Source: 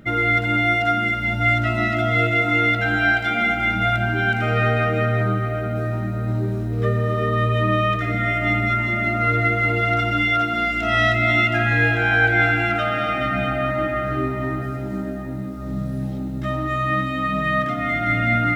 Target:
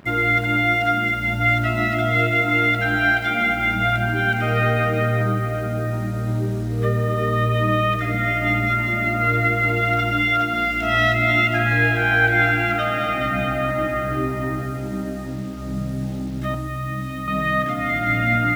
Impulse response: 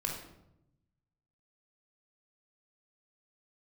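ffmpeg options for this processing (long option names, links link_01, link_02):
-filter_complex "[0:a]asettb=1/sr,asplit=3[link_01][link_02][link_03];[link_01]atrim=end=16.544[link_04];[link_02]atrim=start=16.54:end=17.28,asetpts=PTS-STARTPTS,afade=type=in:duration=0.004:curve=qsin,afade=type=out:start_time=0.736:duration=0.004:curve=qsin,acrossover=split=210[link_05][link_06];[link_06]acompressor=threshold=-34dB:ratio=2.5[link_07];[link_05][link_07]amix=inputs=2:normalize=0[link_08];[link_03]atrim=start=17.276[link_09];[link_04][link_08]acrossfade=duration=0.004:curve1=hsin:curve2=qsin[link_10];[link_10][link_09]acrossfade=duration=0.004:curve1=qsin:curve2=hsin,acrusher=bits=6:mix=0:aa=0.5"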